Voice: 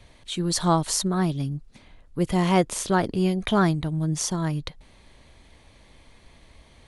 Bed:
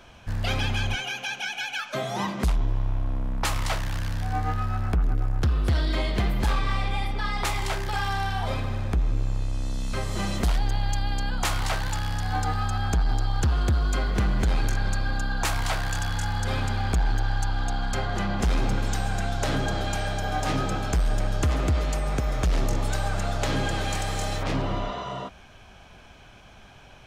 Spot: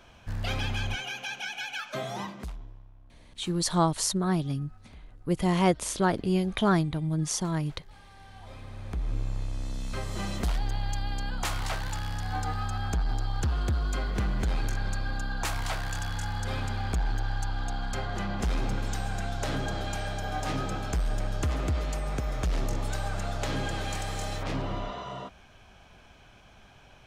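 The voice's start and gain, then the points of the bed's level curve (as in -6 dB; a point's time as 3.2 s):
3.10 s, -3.0 dB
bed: 2.11 s -4.5 dB
2.92 s -27.5 dB
8.06 s -27.5 dB
9.14 s -5 dB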